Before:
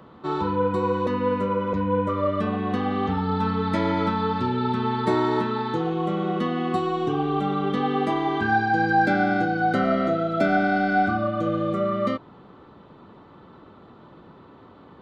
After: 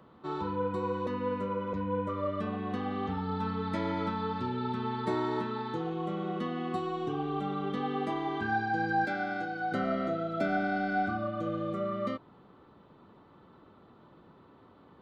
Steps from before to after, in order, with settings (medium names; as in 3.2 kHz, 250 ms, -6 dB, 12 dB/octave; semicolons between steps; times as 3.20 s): 9.05–9.72 s: bass shelf 360 Hz -10 dB; trim -9 dB